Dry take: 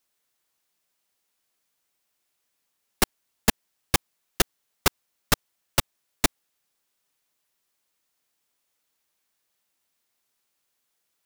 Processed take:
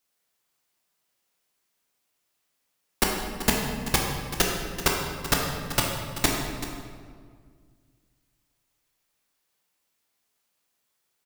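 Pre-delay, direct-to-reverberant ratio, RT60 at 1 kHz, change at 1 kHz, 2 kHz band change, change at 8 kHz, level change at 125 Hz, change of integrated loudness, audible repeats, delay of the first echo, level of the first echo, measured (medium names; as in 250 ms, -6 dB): 11 ms, -1.0 dB, 1.8 s, +1.5 dB, +1.0 dB, +0.5 dB, +3.0 dB, 0.0 dB, 1, 384 ms, -14.0 dB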